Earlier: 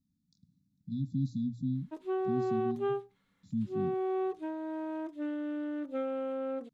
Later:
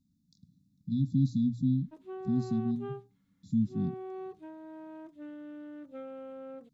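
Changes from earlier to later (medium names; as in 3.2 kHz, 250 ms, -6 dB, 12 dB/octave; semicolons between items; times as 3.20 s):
speech +5.5 dB; background -9.0 dB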